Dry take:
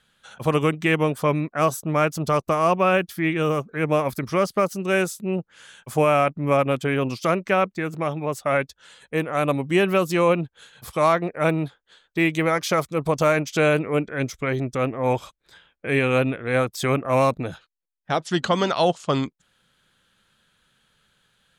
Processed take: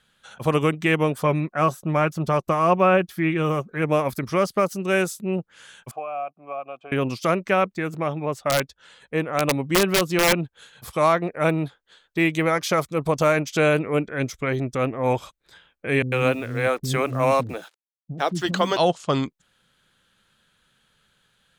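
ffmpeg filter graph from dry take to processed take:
-filter_complex "[0:a]asettb=1/sr,asplit=3[s0][s1][s2];[s0]atrim=end=1.244[s3];[s1]atrim=start=1.24:end=3.82,asetpts=PTS-STARTPTS,afade=t=in:d=0.004:c=qsin,afade=t=out:st=2.576:d=0.004:c=qsin,acrossover=split=2900[s4][s5];[s5]acompressor=threshold=0.00794:ratio=4:attack=1:release=60[s6];[s4][s6]amix=inputs=2:normalize=0,aecho=1:1:5.5:0.31,atrim=end_sample=113778[s7];[s2]atrim=start=3.816[s8];[s3][s7]acrossfade=d=0.004:c1=hsin:c2=qsin[s9];[s9][s8]acrossfade=d=0.004:c1=qsin:c2=hsin,asettb=1/sr,asplit=3[s10][s11][s12];[s10]atrim=end=5.914[s13];[s11]atrim=start=5.91:end=6.92,asetpts=PTS-STARTPTS,afade=t=in:d=0.004:c=qsin,afade=t=out:st=1.006:d=0.004:c=qsin,acrossover=split=260|3600[s14][s15][s16];[s14]acompressor=threshold=0.0398:ratio=4[s17];[s15]acompressor=threshold=0.1:ratio=4[s18];[s16]acompressor=threshold=0.00355:ratio=4[s19];[s17][s18][s19]amix=inputs=3:normalize=0,asplit=3[s20][s21][s22];[s20]bandpass=f=730:t=q:w=8,volume=1[s23];[s21]bandpass=f=1090:t=q:w=8,volume=0.501[s24];[s22]bandpass=f=2440:t=q:w=8,volume=0.355[s25];[s23][s24][s25]amix=inputs=3:normalize=0[s26];[s12]atrim=start=6.916[s27];[s13][s26]acrossfade=d=0.004:c1=hsin:c2=qsin[s28];[s28][s27]acrossfade=d=0.004:c1=qsin:c2=hsin,asettb=1/sr,asplit=3[s29][s30][s31];[s29]atrim=end=7.974[s32];[s30]atrim=start=7.97:end=10.39,asetpts=PTS-STARTPTS,afade=t=in:d=0.004:c=qsin,afade=t=out:st=2.416:d=0.004:c=qsin,highshelf=f=7500:g=-11,aeval=exprs='(mod(3.76*val(0)+1,2)-1)/3.76':c=same[s33];[s31]atrim=start=10.386[s34];[s32][s33]acrossfade=d=0.004:c1=hsin:c2=qsin[s35];[s35][s34]acrossfade=d=0.004:c1=qsin:c2=hsin,asettb=1/sr,asplit=3[s36][s37][s38];[s36]atrim=end=16.024[s39];[s37]atrim=start=16.02:end=18.77,asetpts=PTS-STARTPTS,afade=t=in:d=0.004:c=qsin,afade=t=out:st=2.746:d=0.004:c=qsin,acrusher=bits=7:mix=0:aa=0.5,acrossover=split=270[s40][s41];[s41]adelay=100[s42];[s40][s42]amix=inputs=2:normalize=0,atrim=end_sample=121275[s43];[s38]atrim=start=18.766[s44];[s39][s43]acrossfade=d=0.004:c1=hsin:c2=qsin[s45];[s45][s44]acrossfade=d=0.004:c1=qsin:c2=hsin"

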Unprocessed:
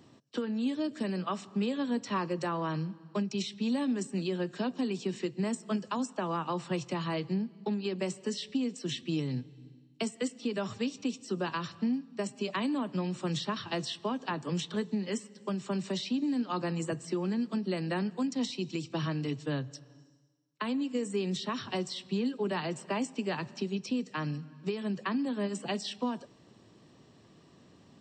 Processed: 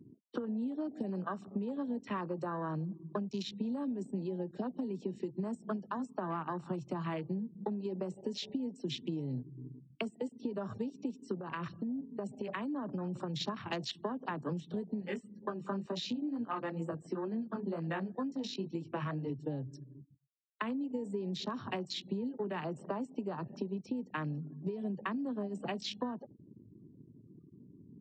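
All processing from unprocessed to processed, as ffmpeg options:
-filter_complex "[0:a]asettb=1/sr,asplit=3[s0][s1][s2];[s0]atrim=end=5.164[s3];[s1]atrim=start=5.16:end=7.14,asetpts=PTS-STARTPTS,afade=t=in:d=0.004:c=qsin,afade=t=out:st=1.976:d=0.004:c=qsin,highshelf=f=5400:g=3,bandreject=f=510:w=10[s4];[s2]atrim=start=7.136[s5];[s3][s4]acrossfade=d=0.004:c1=hsin:c2=qsin[s6];[s6][s5]acrossfade=d=0.004:c1=qsin:c2=hsin,asettb=1/sr,asplit=3[s7][s8][s9];[s7]atrim=end=11.384[s10];[s8]atrim=start=11.38:end=13.41,asetpts=PTS-STARTPTS,afade=t=in:d=0.004:c=qsin,afade=t=out:st=2.026:d=0.004:c=qsin,asubboost=boost=5:cutoff=99,acompressor=threshold=0.0158:ratio=16:attack=3.2:release=140:knee=1:detection=peak[s11];[s9]atrim=start=13.406[s12];[s10][s11]acrossfade=d=0.004:c1=hsin:c2=qsin[s13];[s13][s12]acrossfade=d=0.004:c1=qsin:c2=hsin,asettb=1/sr,asplit=3[s14][s15][s16];[s14]atrim=end=15.004[s17];[s15]atrim=start=15:end=19.3,asetpts=PTS-STARTPTS,afade=t=in:d=0.004:c=qsin,afade=t=out:st=4.296:d=0.004:c=qsin,equalizer=f=1300:w=0.61:g=6,flanger=delay=17.5:depth=3.5:speed=2.1[s18];[s16]atrim=start=19.296[s19];[s17][s18]acrossfade=d=0.004:c1=hsin:c2=qsin[s20];[s20][s19]acrossfade=d=0.004:c1=qsin:c2=hsin,afftfilt=real='re*gte(hypot(re,im),0.00316)':imag='im*gte(hypot(re,im),0.00316)':win_size=1024:overlap=0.75,acompressor=threshold=0.0126:ratio=16,afwtdn=0.00447,volume=1.78"

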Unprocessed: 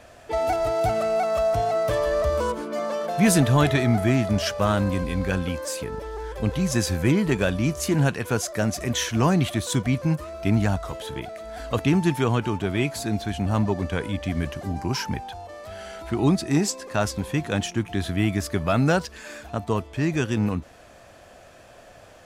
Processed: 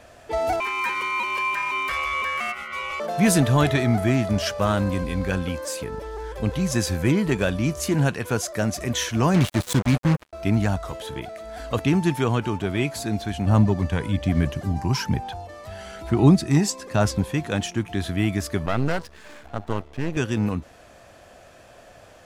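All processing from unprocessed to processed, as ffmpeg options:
-filter_complex "[0:a]asettb=1/sr,asplit=3[s0][s1][s2];[s0]atrim=end=0.604[s3];[s1]atrim=start=0.6:end=3,asetpts=PTS-STARTPTS,afade=t=in:d=0.004:c=qsin,afade=t=out:st=2.396:d=0.004:c=qsin,highpass=110,aeval=exprs='val(0)*sin(2*PI*1700*n/s)':c=same[s4];[s2]atrim=start=2.996[s5];[s3][s4]acrossfade=d=0.004:c1=hsin:c2=qsin[s6];[s6][s5]acrossfade=d=0.004:c1=qsin:c2=hsin,asettb=1/sr,asplit=3[s7][s8][s9];[s7]atrim=end=9.344[s10];[s8]atrim=start=9.34:end=10.33,asetpts=PTS-STARTPTS,afade=t=in:d=0.004:c=qsin,afade=t=out:st=0.986:d=0.004:c=qsin,lowshelf=f=340:g=3.5,acrusher=bits=3:mix=0:aa=0.5[s11];[s9]atrim=start=10.326[s12];[s10][s11]acrossfade=d=0.004:c1=hsin:c2=qsin[s13];[s13][s12]acrossfade=d=0.004:c1=qsin:c2=hsin,asettb=1/sr,asplit=3[s14][s15][s16];[s14]atrim=end=13.474[s17];[s15]atrim=start=13.47:end=17.24,asetpts=PTS-STARTPTS,afade=t=in:d=0.004:c=qsin,afade=t=out:st=3.766:d=0.004:c=qsin,equalizer=f=130:t=o:w=1.3:g=4.5,aphaser=in_gain=1:out_gain=1:delay=1.1:decay=0.3:speed=1.1:type=sinusoidal[s18];[s16]atrim=start=17.236[s19];[s17][s18]acrossfade=d=0.004:c1=hsin:c2=qsin[s20];[s20][s19]acrossfade=d=0.004:c1=qsin:c2=hsin,asettb=1/sr,asplit=3[s21][s22][s23];[s21]atrim=end=18.664[s24];[s22]atrim=start=18.66:end=20.17,asetpts=PTS-STARTPTS,afade=t=in:d=0.004:c=qsin,afade=t=out:st=1.506:d=0.004:c=qsin,highshelf=f=4300:g=-8,aeval=exprs='max(val(0),0)':c=same[s25];[s23]atrim=start=20.166[s26];[s24][s25]acrossfade=d=0.004:c1=hsin:c2=qsin[s27];[s27][s26]acrossfade=d=0.004:c1=qsin:c2=hsin"

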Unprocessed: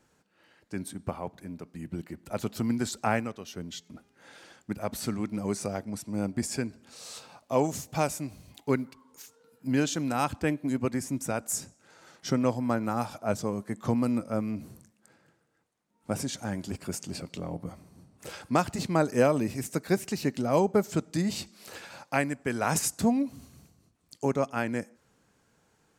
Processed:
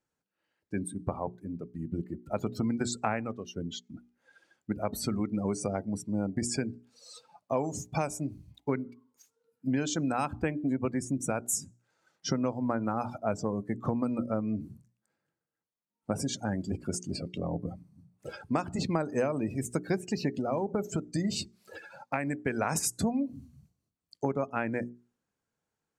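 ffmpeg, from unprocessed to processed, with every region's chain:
-filter_complex "[0:a]asettb=1/sr,asplit=3[s0][s1][s2];[s0]atrim=end=20.314[s3];[s1]atrim=start=20.31:end=22.35,asetpts=PTS-STARTPTS,afade=t=in:d=0.004:c=qsin,afade=t=out:st=2.036:d=0.004:c=qsin,acompressor=threshold=0.0501:ratio=4:attack=3.2:release=140:knee=1:detection=peak,highshelf=f=9200:g=3.5[s4];[s2]atrim=start=22.346[s5];[s3][s4]acrossfade=d=0.004:c1=hsin:c2=qsin[s6];[s6][s5]acrossfade=d=0.004:c1=qsin:c2=hsin,afftdn=nr=22:nf=-40,bandreject=f=60:t=h:w=6,bandreject=f=120:t=h:w=6,bandreject=f=180:t=h:w=6,bandreject=f=240:t=h:w=6,bandreject=f=300:t=h:w=6,bandreject=f=360:t=h:w=6,bandreject=f=420:t=h:w=6,acompressor=threshold=0.0355:ratio=6,volume=1.5"

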